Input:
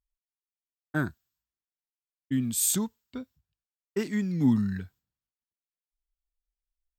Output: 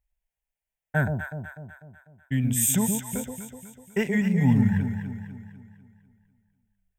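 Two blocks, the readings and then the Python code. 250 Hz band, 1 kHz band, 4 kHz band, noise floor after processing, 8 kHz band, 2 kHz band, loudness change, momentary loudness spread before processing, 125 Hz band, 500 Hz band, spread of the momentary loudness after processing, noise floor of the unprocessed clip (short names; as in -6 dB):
+3.5 dB, +6.5 dB, -0.5 dB, under -85 dBFS, +3.0 dB, +7.5 dB, +3.0 dB, 18 LU, +8.5 dB, +5.0 dB, 20 LU, under -85 dBFS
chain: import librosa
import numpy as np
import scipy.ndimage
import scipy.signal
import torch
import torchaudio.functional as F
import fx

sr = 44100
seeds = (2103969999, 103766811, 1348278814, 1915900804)

p1 = fx.high_shelf(x, sr, hz=4900.0, db=-6.0)
p2 = fx.rider(p1, sr, range_db=3, speed_s=0.5)
p3 = p1 + (p2 * librosa.db_to_amplitude(-1.0))
p4 = fx.fixed_phaser(p3, sr, hz=1200.0, stages=6)
p5 = fx.echo_alternate(p4, sr, ms=124, hz=810.0, feedback_pct=69, wet_db=-4.0)
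y = p5 * librosa.db_to_amplitude(4.5)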